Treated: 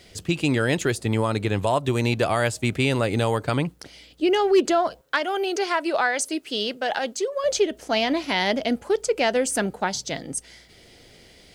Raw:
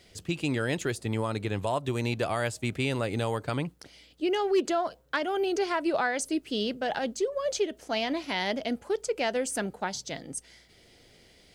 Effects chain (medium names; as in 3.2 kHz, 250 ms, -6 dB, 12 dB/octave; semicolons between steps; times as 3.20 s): 5.01–7.44 s: high-pass 580 Hz 6 dB/octave; trim +7 dB